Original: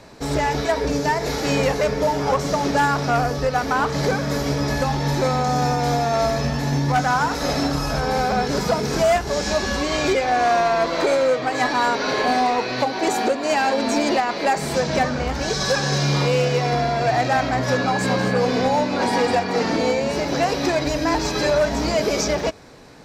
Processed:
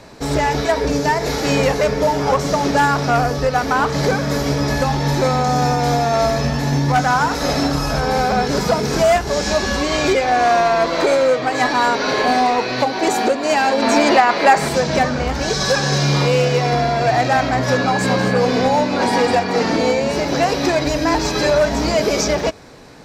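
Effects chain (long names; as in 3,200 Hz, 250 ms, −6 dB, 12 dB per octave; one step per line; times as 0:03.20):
0:13.82–0:14.69: parametric band 1,300 Hz +6.5 dB 2.5 octaves
level +3.5 dB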